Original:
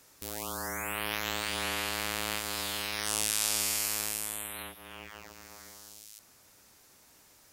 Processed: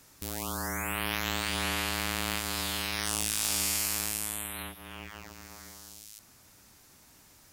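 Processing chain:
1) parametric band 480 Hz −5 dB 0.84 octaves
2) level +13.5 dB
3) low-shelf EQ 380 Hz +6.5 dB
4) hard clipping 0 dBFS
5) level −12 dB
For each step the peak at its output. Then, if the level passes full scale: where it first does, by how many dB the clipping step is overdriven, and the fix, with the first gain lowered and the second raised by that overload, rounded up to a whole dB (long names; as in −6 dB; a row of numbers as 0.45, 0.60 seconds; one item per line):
−6.0, +7.5, +7.5, 0.0, −12.0 dBFS
step 2, 7.5 dB
step 2 +5.5 dB, step 5 −4 dB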